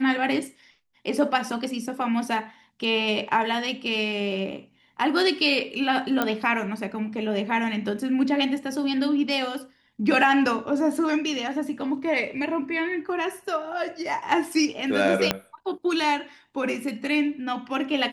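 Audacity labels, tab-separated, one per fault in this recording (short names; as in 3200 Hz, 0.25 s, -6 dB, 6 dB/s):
6.220000	6.220000	pop -9 dBFS
15.310000	15.310000	pop -5 dBFS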